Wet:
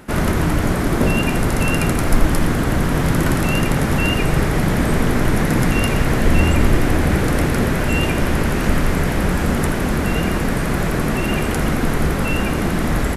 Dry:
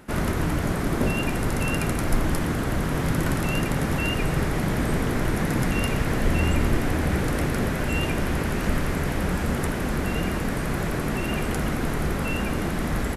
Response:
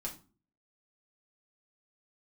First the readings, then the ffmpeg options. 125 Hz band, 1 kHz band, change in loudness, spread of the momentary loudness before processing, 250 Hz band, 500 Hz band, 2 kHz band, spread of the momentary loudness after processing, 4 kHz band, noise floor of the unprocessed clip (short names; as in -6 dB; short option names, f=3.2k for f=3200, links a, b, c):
+7.0 dB, +6.5 dB, +7.0 dB, 3 LU, +7.0 dB, +7.0 dB, +6.5 dB, 3 LU, +6.5 dB, -27 dBFS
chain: -filter_complex "[0:a]asplit=2[a][b];[1:a]atrim=start_sample=2205,adelay=79[c];[b][c]afir=irnorm=-1:irlink=0,volume=-12.5dB[d];[a][d]amix=inputs=2:normalize=0,volume=6.5dB"